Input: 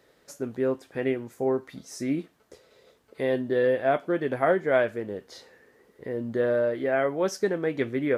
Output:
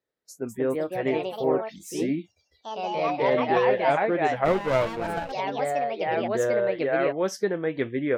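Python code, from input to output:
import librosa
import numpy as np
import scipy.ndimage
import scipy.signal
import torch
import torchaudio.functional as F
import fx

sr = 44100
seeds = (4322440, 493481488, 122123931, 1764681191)

y = fx.noise_reduce_blind(x, sr, reduce_db=26)
y = fx.echo_pitch(y, sr, ms=250, semitones=3, count=3, db_per_echo=-3.0)
y = fx.running_max(y, sr, window=17, at=(4.44, 5.31), fade=0.02)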